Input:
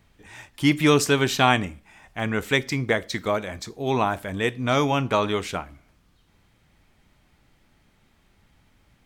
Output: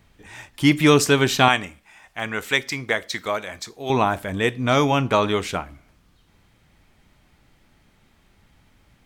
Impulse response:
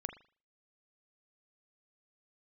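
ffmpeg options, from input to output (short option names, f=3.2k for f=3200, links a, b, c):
-filter_complex "[0:a]asettb=1/sr,asplit=3[a][b][c];[a]atrim=end=1.484[d];[b]atrim=start=1.48:end=3.9,asetpts=PTS-STARTPTS,afade=t=in:d=0.004:c=qsin,afade=t=out:st=2.416:d=0.004:c=qsin,lowshelf=f=470:g=-11.5[e];[c]atrim=start=3.896[f];[d][e]acrossfade=d=0.004:c1=hsin:c2=qsin[g];[g][f]acrossfade=d=0.004:c1=qsin:c2=hsin,volume=3dB"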